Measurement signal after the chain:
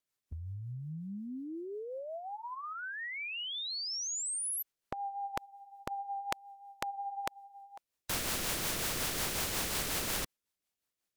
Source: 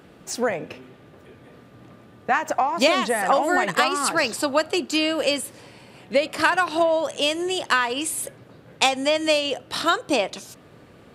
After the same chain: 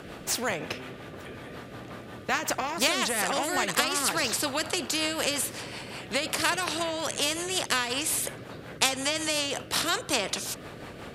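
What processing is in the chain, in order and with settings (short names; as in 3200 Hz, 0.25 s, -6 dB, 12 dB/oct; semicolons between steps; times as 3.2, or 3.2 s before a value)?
rotary speaker horn 5.5 Hz; spectral compressor 2:1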